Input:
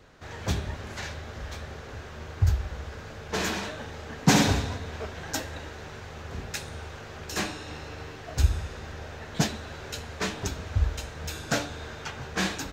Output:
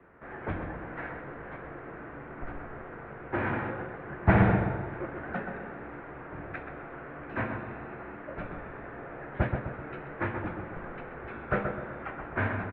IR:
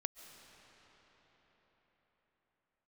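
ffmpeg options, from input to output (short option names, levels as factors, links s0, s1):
-filter_complex "[0:a]asplit=2[s0][s1];[s1]adelay=128,lowpass=f=1600:p=1,volume=0.596,asplit=2[s2][s3];[s3]adelay=128,lowpass=f=1600:p=1,volume=0.48,asplit=2[s4][s5];[s5]adelay=128,lowpass=f=1600:p=1,volume=0.48,asplit=2[s6][s7];[s7]adelay=128,lowpass=f=1600:p=1,volume=0.48,asplit=2[s8][s9];[s9]adelay=128,lowpass=f=1600:p=1,volume=0.48,asplit=2[s10][s11];[s11]adelay=128,lowpass=f=1600:p=1,volume=0.48[s12];[s0][s2][s4][s6][s8][s10][s12]amix=inputs=7:normalize=0,highpass=f=160:t=q:w=0.5412,highpass=f=160:t=q:w=1.307,lowpass=f=2200:t=q:w=0.5176,lowpass=f=2200:t=q:w=0.7071,lowpass=f=2200:t=q:w=1.932,afreqshift=-90"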